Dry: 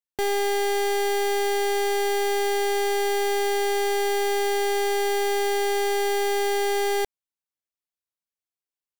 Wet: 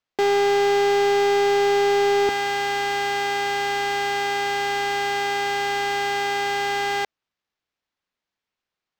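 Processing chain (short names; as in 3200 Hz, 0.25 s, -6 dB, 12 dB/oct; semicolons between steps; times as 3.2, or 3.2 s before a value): HPF 200 Hz 12 dB/oct, from 2.29 s 800 Hz; soft clip -20.5 dBFS, distortion -16 dB; decimation joined by straight lines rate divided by 4×; gain +8 dB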